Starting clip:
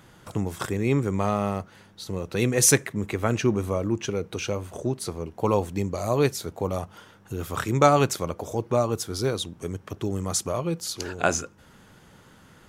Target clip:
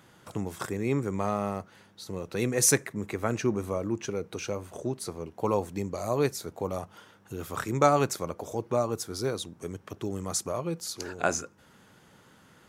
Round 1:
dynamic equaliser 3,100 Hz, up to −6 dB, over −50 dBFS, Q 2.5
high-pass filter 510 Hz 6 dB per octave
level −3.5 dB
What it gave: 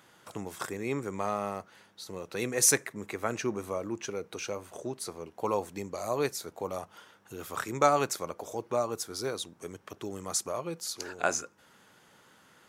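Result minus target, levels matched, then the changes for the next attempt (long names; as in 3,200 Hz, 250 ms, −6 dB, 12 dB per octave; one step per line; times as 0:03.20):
125 Hz band −7.0 dB
change: high-pass filter 130 Hz 6 dB per octave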